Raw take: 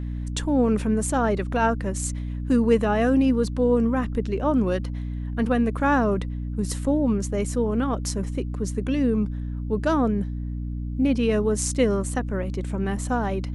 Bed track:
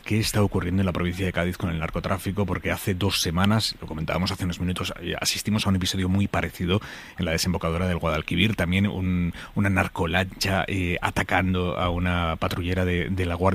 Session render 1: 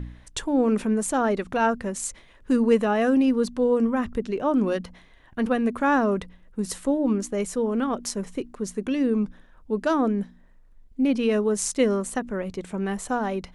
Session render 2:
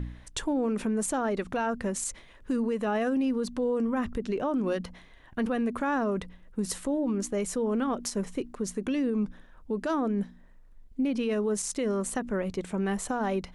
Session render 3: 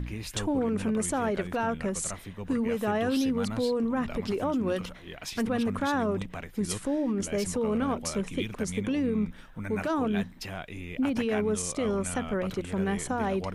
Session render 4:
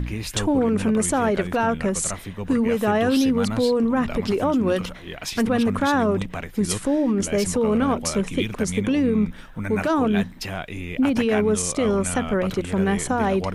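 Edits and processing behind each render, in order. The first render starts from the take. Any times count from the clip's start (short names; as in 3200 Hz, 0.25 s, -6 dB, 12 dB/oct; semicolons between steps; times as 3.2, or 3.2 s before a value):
de-hum 60 Hz, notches 5
compressor, threshold -22 dBFS, peak gain reduction 8.5 dB; limiter -21 dBFS, peak gain reduction 10 dB
add bed track -14.5 dB
gain +7.5 dB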